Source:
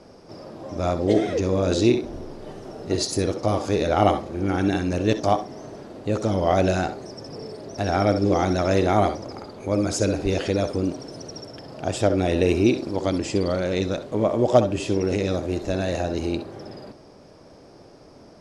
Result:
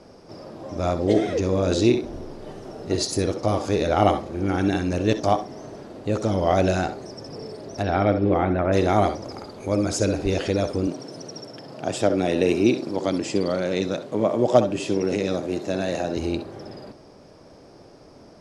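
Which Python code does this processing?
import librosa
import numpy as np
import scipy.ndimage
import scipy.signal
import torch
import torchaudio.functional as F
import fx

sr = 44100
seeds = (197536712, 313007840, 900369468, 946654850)

y = fx.lowpass(x, sr, hz=fx.line((7.82, 4600.0), (8.72, 2100.0)), slope=24, at=(7.82, 8.72), fade=0.02)
y = fx.high_shelf(y, sr, hz=5200.0, db=5.0, at=(9.24, 9.76))
y = fx.highpass(y, sr, hz=120.0, slope=24, at=(10.87, 16.17))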